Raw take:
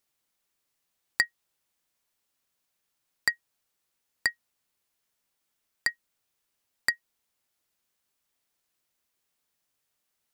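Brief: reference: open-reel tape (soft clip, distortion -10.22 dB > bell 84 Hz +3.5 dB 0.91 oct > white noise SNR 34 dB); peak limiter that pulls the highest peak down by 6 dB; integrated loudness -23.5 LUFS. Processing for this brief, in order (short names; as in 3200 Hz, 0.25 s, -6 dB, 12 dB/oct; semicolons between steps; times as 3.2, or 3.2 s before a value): limiter -12 dBFS; soft clip -23.5 dBFS; bell 84 Hz +3.5 dB 0.91 oct; white noise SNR 34 dB; gain +15 dB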